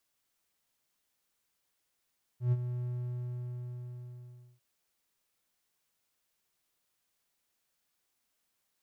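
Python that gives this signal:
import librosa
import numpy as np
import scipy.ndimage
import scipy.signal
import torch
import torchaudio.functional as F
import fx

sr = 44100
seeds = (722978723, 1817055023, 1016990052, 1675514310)

y = fx.adsr_tone(sr, wave='triangle', hz=123.0, attack_ms=121.0, decay_ms=39.0, sustain_db=-10.0, held_s=0.44, release_ms=1760.0, level_db=-20.5)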